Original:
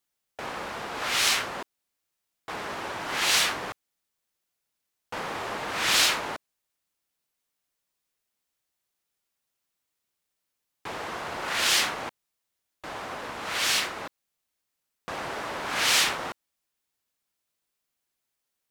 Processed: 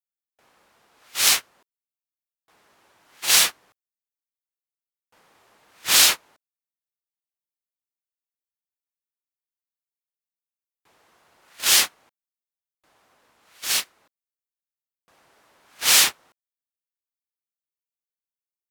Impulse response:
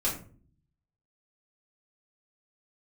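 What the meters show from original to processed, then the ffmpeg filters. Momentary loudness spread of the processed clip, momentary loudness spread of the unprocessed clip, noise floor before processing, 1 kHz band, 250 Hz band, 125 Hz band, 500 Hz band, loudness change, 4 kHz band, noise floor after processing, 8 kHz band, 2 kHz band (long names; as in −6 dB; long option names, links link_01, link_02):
15 LU, 18 LU, −83 dBFS, −4.5 dB, −6.5 dB, can't be measured, −6.5 dB, +8.0 dB, +4.0 dB, below −85 dBFS, +8.0 dB, 0.0 dB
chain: -af "agate=range=-29dB:threshold=-23dB:ratio=16:detection=peak,aemphasis=mode=production:type=50kf,volume=1.5dB"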